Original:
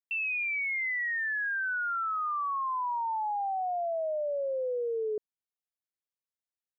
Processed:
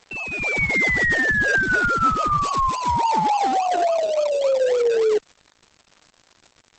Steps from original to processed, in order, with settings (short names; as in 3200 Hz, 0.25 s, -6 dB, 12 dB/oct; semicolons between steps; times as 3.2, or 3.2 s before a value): 0.69–1.12 spectral gain 250–1300 Hz -13 dB; in parallel at -8 dB: decimation with a swept rate 33×, swing 60% 3.5 Hz; 2.37–2.93 on the sum: high shelf 2600 Hz -> 2500 Hz +11 dB; AGC gain up to 13 dB; limiter -14 dBFS, peak gain reduction 8 dB; crackle 220/s -34 dBFS; 0.83–1.8 notches 50/100 Hz; 4.02–4.6 Butterworth band-stop 1700 Hz, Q 2.3; Opus 10 kbps 48000 Hz